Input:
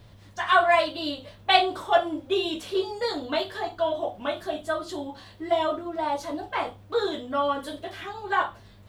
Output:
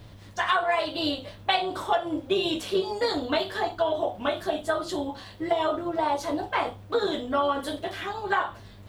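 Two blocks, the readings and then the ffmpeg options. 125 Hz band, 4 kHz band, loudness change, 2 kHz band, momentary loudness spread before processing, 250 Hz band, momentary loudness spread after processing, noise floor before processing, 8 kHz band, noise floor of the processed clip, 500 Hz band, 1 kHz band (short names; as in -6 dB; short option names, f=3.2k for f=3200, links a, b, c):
+4.0 dB, -1.0 dB, -1.0 dB, -2.0 dB, 13 LU, +2.0 dB, 7 LU, -51 dBFS, +2.5 dB, -47 dBFS, -0.5 dB, -1.5 dB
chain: -af "acompressor=threshold=-24dB:ratio=12,tremolo=f=200:d=0.4,volume=5.5dB"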